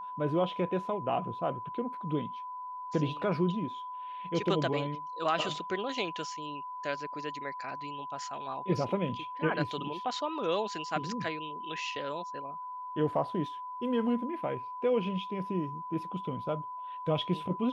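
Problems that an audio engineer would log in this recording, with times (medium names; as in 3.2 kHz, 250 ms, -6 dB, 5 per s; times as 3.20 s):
whine 1 kHz -38 dBFS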